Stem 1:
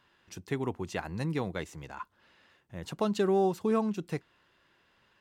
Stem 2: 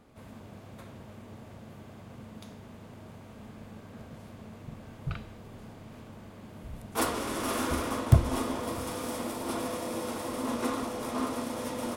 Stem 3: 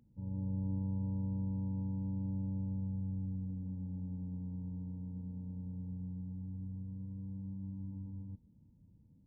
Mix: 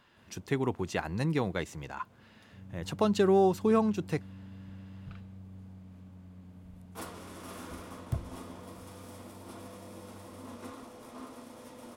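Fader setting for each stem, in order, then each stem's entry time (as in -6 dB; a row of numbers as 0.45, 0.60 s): +2.5, -14.0, -10.0 dB; 0.00, 0.00, 2.35 s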